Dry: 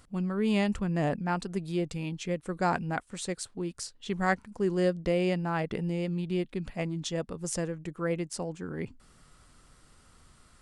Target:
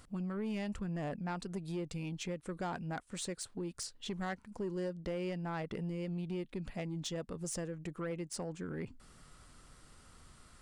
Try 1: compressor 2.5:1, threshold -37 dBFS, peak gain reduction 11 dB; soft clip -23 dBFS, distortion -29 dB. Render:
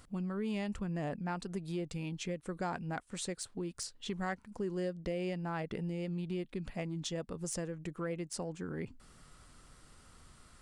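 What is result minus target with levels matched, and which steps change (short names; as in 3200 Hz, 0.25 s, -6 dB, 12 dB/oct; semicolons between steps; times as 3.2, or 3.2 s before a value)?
soft clip: distortion -12 dB
change: soft clip -30.5 dBFS, distortion -18 dB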